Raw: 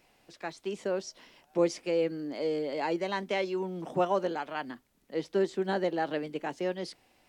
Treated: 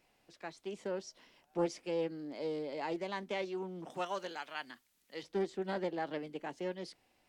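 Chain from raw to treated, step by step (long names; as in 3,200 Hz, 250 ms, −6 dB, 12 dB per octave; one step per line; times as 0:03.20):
0:03.90–0:05.23: tilt shelving filter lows −9 dB, about 1,100 Hz
highs frequency-modulated by the lows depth 0.22 ms
level −7 dB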